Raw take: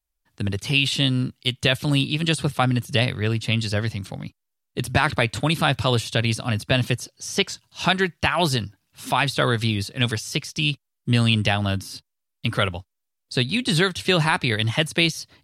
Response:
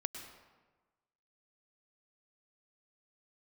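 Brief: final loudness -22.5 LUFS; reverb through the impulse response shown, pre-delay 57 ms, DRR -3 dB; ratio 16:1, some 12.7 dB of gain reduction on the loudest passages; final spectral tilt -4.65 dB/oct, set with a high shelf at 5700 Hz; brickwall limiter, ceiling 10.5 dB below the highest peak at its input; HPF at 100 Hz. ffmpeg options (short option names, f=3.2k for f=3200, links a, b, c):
-filter_complex "[0:a]highpass=100,highshelf=f=5.7k:g=-8.5,acompressor=threshold=-28dB:ratio=16,alimiter=limit=-22dB:level=0:latency=1,asplit=2[a][b];[1:a]atrim=start_sample=2205,adelay=57[c];[b][c]afir=irnorm=-1:irlink=0,volume=3dB[d];[a][d]amix=inputs=2:normalize=0,volume=8.5dB"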